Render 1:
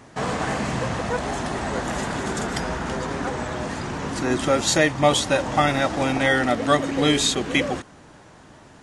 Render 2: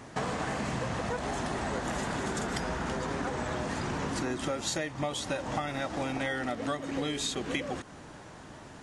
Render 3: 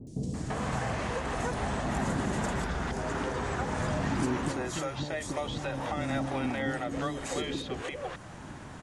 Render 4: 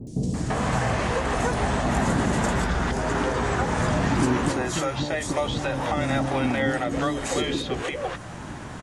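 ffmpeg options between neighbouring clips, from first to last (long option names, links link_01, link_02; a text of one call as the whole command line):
ffmpeg -i in.wav -af "acompressor=threshold=-29dB:ratio=12" out.wav
ffmpeg -i in.wav -filter_complex "[0:a]acrossover=split=690[link_01][link_02];[link_01]aphaser=in_gain=1:out_gain=1:delay=2.7:decay=0.36:speed=0.47:type=triangular[link_03];[link_02]alimiter=level_in=5.5dB:limit=-24dB:level=0:latency=1:release=253,volume=-5.5dB[link_04];[link_03][link_04]amix=inputs=2:normalize=0,acrossover=split=410|4700[link_05][link_06][link_07];[link_07]adelay=70[link_08];[link_06]adelay=340[link_09];[link_05][link_09][link_08]amix=inputs=3:normalize=0,volume=2.5dB" out.wav
ffmpeg -i in.wav -filter_complex "[0:a]asplit=2[link_01][link_02];[link_02]adelay=17,volume=-12dB[link_03];[link_01][link_03]amix=inputs=2:normalize=0,volume=7.5dB" out.wav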